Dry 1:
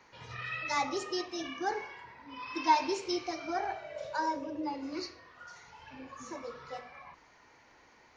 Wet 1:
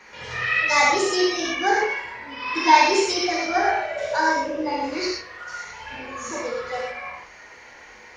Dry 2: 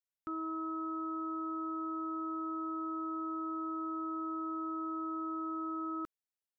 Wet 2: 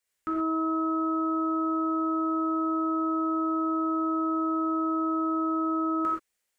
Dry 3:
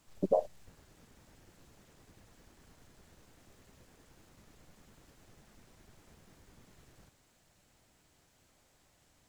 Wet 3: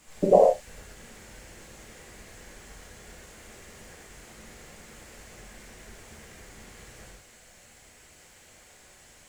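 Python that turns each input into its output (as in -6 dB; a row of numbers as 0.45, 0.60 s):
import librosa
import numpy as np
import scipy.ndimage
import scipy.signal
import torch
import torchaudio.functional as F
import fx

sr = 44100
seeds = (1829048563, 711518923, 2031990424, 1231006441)

y = fx.graphic_eq(x, sr, hz=(500, 2000, 8000), db=(3, 8, 7))
y = fx.rev_gated(y, sr, seeds[0], gate_ms=150, shape='flat', drr_db=-4.0)
y = F.gain(torch.from_numpy(y), 5.5).numpy()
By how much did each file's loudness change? +13.5, +10.5, +12.0 LU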